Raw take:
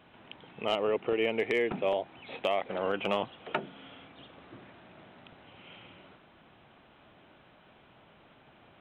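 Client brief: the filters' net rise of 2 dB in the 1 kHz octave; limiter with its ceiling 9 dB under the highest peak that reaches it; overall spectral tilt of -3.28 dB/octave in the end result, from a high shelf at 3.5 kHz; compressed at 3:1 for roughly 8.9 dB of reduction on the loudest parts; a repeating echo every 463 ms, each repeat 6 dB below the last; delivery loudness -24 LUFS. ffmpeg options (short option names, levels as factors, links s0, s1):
-af "equalizer=f=1000:t=o:g=3.5,highshelf=f=3500:g=-7.5,acompressor=threshold=0.0158:ratio=3,alimiter=level_in=1.88:limit=0.0631:level=0:latency=1,volume=0.531,aecho=1:1:463|926|1389|1852|2315|2778:0.501|0.251|0.125|0.0626|0.0313|0.0157,volume=8.41"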